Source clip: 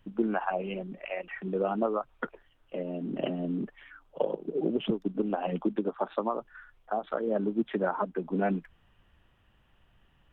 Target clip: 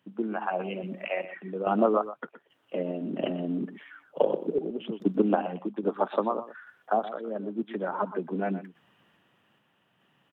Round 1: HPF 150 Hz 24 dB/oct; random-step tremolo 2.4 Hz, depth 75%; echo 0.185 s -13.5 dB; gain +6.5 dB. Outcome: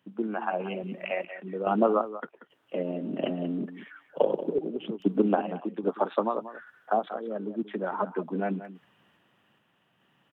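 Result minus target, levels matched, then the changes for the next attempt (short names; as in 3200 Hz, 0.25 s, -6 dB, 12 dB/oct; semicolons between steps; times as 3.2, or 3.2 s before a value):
echo 63 ms late
change: echo 0.122 s -13.5 dB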